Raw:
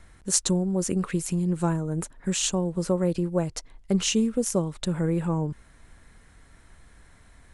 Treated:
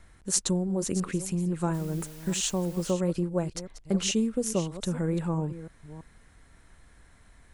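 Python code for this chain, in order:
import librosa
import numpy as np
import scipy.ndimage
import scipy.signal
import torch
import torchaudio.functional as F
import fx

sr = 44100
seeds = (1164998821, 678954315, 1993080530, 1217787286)

y = fx.reverse_delay(x, sr, ms=334, wet_db=-13.5)
y = fx.quant_dither(y, sr, seeds[0], bits=8, dither='triangular', at=(1.73, 2.9), fade=0.02)
y = y * librosa.db_to_amplitude(-3.0)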